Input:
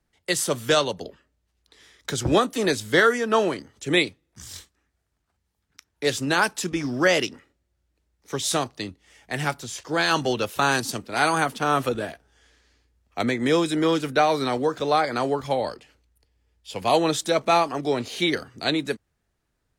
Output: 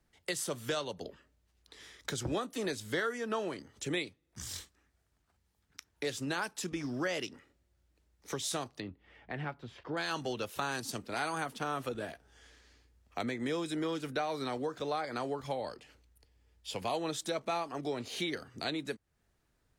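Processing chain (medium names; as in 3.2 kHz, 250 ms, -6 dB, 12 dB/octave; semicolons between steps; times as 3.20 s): compression 2.5:1, threshold -39 dBFS, peak gain reduction 16.5 dB; 8.80–9.97 s: distance through air 420 m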